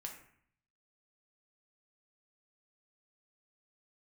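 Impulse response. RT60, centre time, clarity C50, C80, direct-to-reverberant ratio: 0.60 s, 23 ms, 7.0 dB, 10.0 dB, 1.0 dB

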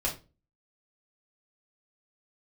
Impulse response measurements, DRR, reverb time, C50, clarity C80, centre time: −2.5 dB, non-exponential decay, 10.5 dB, 17.5 dB, 18 ms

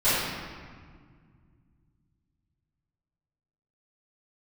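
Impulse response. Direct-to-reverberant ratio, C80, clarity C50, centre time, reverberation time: −18.5 dB, −0.5 dB, −3.5 dB, 119 ms, 1.8 s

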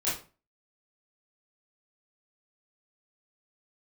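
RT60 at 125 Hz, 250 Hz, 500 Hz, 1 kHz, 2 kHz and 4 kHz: 0.40, 0.40, 0.35, 0.35, 0.30, 0.25 seconds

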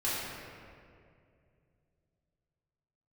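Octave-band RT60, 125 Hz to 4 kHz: 3.7, 2.9, 2.7, 2.0, 1.9, 1.4 seconds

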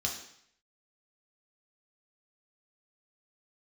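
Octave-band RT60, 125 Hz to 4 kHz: 0.70, 0.65, 0.65, 0.70, 0.70, 0.70 seconds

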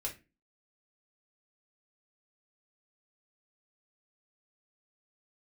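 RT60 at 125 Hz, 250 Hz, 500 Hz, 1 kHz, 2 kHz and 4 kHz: 0.40, 0.45, 0.30, 0.25, 0.30, 0.20 seconds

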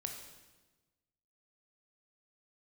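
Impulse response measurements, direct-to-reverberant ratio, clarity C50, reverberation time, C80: 3.0 dB, 5.5 dB, 1.2 s, 7.5 dB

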